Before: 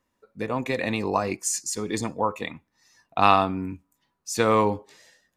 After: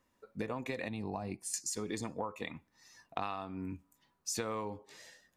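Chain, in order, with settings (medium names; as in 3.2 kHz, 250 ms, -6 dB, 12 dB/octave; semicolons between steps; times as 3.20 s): 0.88–1.54 s: FFT filter 180 Hz 0 dB, 530 Hz -11 dB, 760 Hz -3 dB, 1.2 kHz -15 dB, 4 kHz -8 dB, 6.7 kHz -21 dB, 9.7 kHz -5 dB, 14 kHz -16 dB; compression 16:1, threshold -34 dBFS, peak gain reduction 23 dB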